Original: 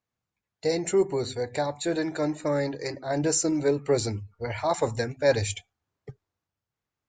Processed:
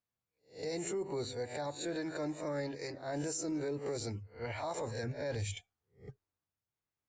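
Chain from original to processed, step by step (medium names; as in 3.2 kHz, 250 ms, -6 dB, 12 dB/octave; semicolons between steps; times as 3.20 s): reverse spectral sustain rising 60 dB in 0.32 s; 5.03–5.57 s: tone controls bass +6 dB, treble -3 dB; peak limiter -20.5 dBFS, peak gain reduction 10.5 dB; trim -9 dB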